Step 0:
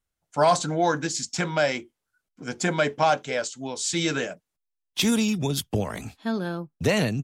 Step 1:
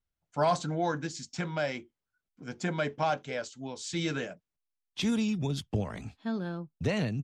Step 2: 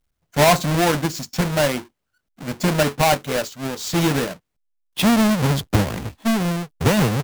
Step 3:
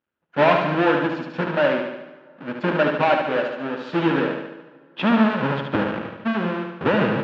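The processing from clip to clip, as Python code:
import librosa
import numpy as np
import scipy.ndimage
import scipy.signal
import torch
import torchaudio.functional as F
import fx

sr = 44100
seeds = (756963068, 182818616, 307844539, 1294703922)

y1 = scipy.signal.sosfilt(scipy.signal.butter(2, 6700.0, 'lowpass', fs=sr, output='sos'), x)
y1 = fx.bass_treble(y1, sr, bass_db=5, treble_db=-2)
y1 = fx.rider(y1, sr, range_db=4, speed_s=2.0)
y1 = y1 * 10.0 ** (-8.5 / 20.0)
y2 = fx.halfwave_hold(y1, sr)
y2 = y2 * 10.0 ** (8.0 / 20.0)
y3 = fx.cabinet(y2, sr, low_hz=330.0, low_slope=12, high_hz=2400.0, hz=(440.0, 720.0, 1100.0, 2100.0), db=(-5, -10, -5, -10))
y3 = fx.echo_feedback(y3, sr, ms=73, feedback_pct=56, wet_db=-5.0)
y3 = fx.rev_plate(y3, sr, seeds[0], rt60_s=2.8, hf_ratio=0.65, predelay_ms=0, drr_db=19.0)
y3 = y3 * 10.0 ** (4.5 / 20.0)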